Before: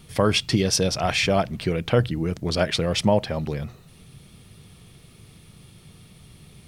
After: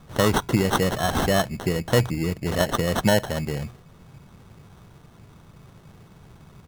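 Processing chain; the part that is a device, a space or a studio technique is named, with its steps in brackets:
crushed at another speed (tape speed factor 0.8×; decimation without filtering 23×; tape speed factor 1.25×)

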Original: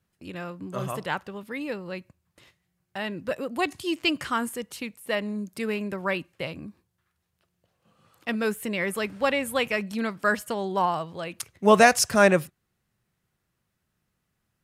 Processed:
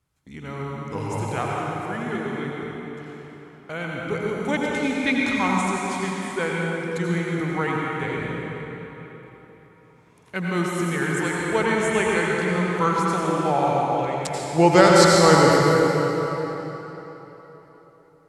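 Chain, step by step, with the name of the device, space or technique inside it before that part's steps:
slowed and reverbed (speed change −20%; convolution reverb RT60 4.0 s, pre-delay 79 ms, DRR −3.5 dB)

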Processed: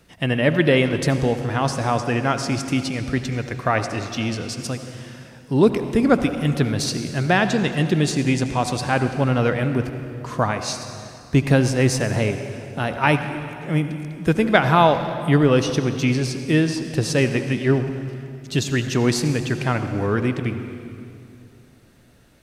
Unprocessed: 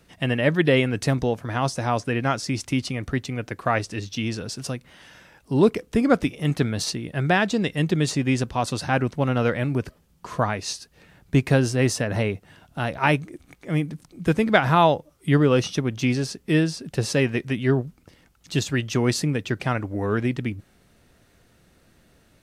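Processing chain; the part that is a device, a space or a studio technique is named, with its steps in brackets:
saturated reverb return (on a send at −7 dB: convolution reverb RT60 2.4 s, pre-delay 67 ms + soft clipping −15 dBFS, distortion −15 dB)
on the sum: level +2 dB

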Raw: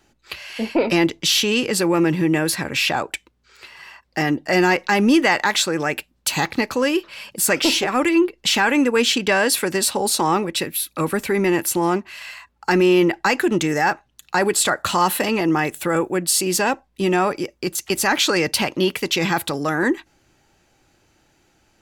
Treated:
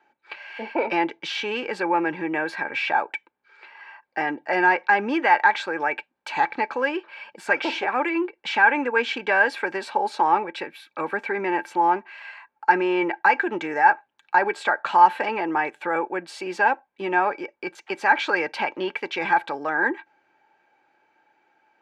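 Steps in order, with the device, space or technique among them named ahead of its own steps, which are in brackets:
tin-can telephone (band-pass filter 400–2,200 Hz; hollow resonant body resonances 870/1,600/2,300 Hz, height 13 dB, ringing for 45 ms)
level −4 dB

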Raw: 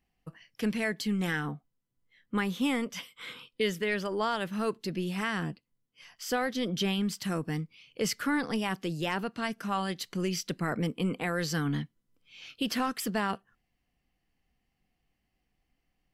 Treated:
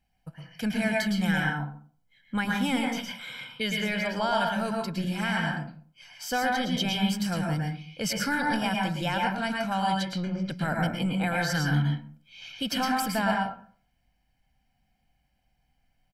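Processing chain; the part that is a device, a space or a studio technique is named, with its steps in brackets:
0:09.97–0:10.50: treble cut that deepens with the level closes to 890 Hz, closed at −27 dBFS
microphone above a desk (comb filter 1.3 ms, depth 71%; convolution reverb RT60 0.45 s, pre-delay 105 ms, DRR −0.5 dB)

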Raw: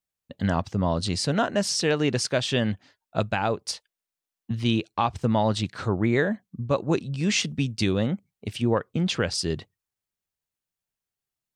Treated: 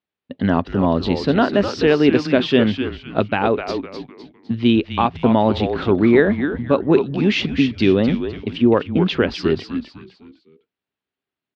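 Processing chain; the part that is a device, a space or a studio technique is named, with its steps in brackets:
frequency-shifting delay pedal into a guitar cabinet (echo with shifted repeats 254 ms, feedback 36%, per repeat −140 Hz, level −7.5 dB; loudspeaker in its box 100–3,700 Hz, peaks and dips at 130 Hz −5 dB, 260 Hz +8 dB, 390 Hz +7 dB)
level +5.5 dB

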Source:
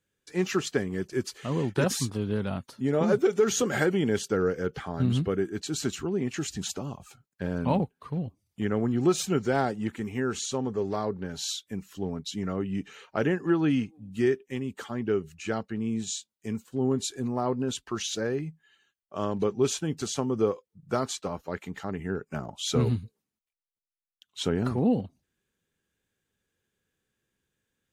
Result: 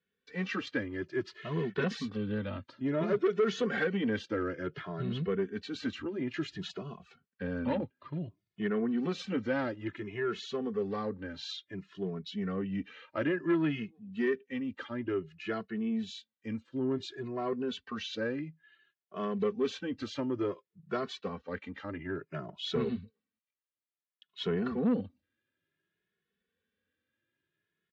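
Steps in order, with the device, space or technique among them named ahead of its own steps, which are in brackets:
barber-pole flanger into a guitar amplifier (barber-pole flanger 2.3 ms +0.57 Hz; soft clipping −21 dBFS, distortion −16 dB; loudspeaker in its box 97–4,000 Hz, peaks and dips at 130 Hz −7 dB, 810 Hz −8 dB, 1,800 Hz +4 dB)

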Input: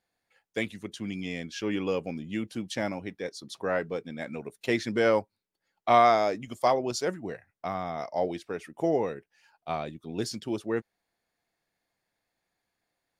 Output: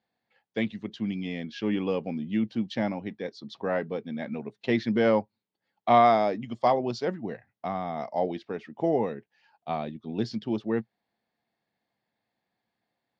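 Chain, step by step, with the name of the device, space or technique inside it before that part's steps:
guitar cabinet (loudspeaker in its box 76–4,400 Hz, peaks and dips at 86 Hz −4 dB, 120 Hz +5 dB, 220 Hz +8 dB, 810 Hz +3 dB, 1,400 Hz −4 dB, 2,400 Hz −3 dB)

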